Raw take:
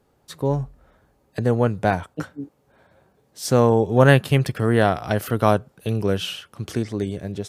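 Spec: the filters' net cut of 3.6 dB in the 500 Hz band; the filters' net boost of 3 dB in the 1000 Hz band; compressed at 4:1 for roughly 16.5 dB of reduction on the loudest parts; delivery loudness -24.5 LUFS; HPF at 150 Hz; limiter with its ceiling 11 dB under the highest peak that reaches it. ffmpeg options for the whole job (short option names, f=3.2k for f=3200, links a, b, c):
-af "highpass=150,equalizer=f=500:t=o:g=-6,equalizer=f=1k:t=o:g=6.5,acompressor=threshold=-30dB:ratio=4,volume=13.5dB,alimiter=limit=-11.5dB:level=0:latency=1"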